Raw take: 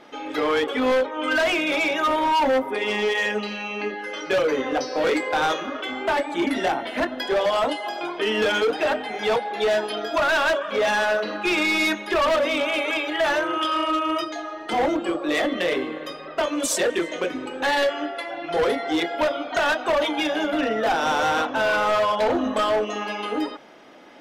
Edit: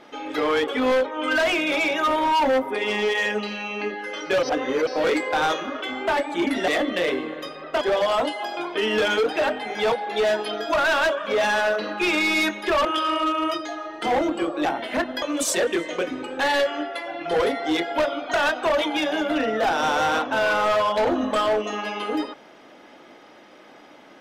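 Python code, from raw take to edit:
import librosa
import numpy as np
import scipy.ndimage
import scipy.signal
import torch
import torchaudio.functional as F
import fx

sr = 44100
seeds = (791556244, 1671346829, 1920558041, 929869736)

y = fx.edit(x, sr, fx.reverse_span(start_s=4.43, length_s=0.44),
    fx.swap(start_s=6.68, length_s=0.57, other_s=15.32, other_length_s=1.13),
    fx.cut(start_s=12.29, length_s=1.23), tone=tone)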